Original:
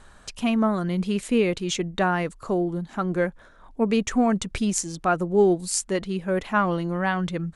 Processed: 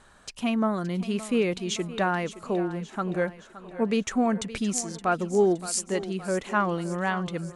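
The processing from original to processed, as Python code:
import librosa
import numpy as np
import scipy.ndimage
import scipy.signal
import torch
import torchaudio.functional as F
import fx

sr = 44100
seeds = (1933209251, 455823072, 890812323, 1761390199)

p1 = fx.low_shelf(x, sr, hz=72.0, db=-10.5)
p2 = p1 + fx.echo_thinned(p1, sr, ms=569, feedback_pct=55, hz=180.0, wet_db=-14.5, dry=0)
y = p2 * librosa.db_to_amplitude(-2.5)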